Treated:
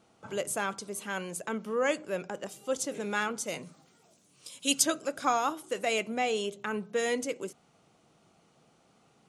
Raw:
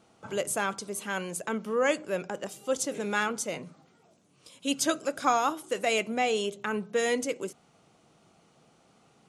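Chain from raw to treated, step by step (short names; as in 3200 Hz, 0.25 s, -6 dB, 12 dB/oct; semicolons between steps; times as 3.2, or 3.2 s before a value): 3.46–4.81 high shelf 4800 Hz -> 2600 Hz +12 dB; gain -2.5 dB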